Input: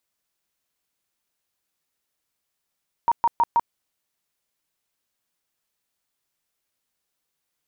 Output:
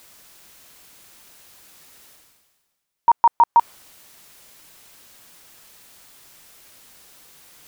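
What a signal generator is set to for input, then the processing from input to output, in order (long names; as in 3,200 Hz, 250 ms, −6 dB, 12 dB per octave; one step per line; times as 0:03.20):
tone bursts 937 Hz, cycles 34, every 0.16 s, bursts 4, −14.5 dBFS
dynamic equaliser 990 Hz, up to +7 dB, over −34 dBFS, Q 0.81
reversed playback
upward compression, threshold −25 dBFS
reversed playback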